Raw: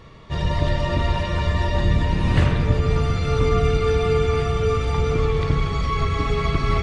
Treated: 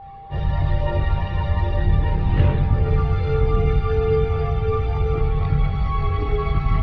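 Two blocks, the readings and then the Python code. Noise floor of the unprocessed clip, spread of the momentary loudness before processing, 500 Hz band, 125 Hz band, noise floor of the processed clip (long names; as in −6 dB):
−26 dBFS, 3 LU, −2.0 dB, +1.0 dB, −29 dBFS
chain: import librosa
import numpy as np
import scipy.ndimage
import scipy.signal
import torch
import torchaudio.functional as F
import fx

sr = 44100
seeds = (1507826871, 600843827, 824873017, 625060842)

y = fx.chorus_voices(x, sr, voices=4, hz=0.42, base_ms=21, depth_ms=1.4, mix_pct=65)
y = y + 10.0 ** (-36.0 / 20.0) * np.sin(2.0 * np.pi * 790.0 * np.arange(len(y)) / sr)
y = fx.air_absorb(y, sr, metres=280.0)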